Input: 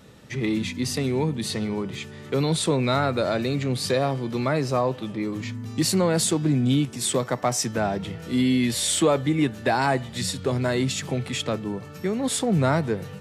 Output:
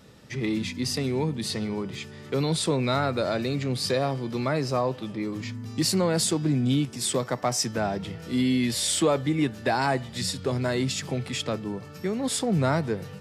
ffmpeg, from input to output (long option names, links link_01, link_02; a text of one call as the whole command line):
ffmpeg -i in.wav -af "equalizer=frequency=5000:width=5.6:gain=6,volume=-2.5dB" out.wav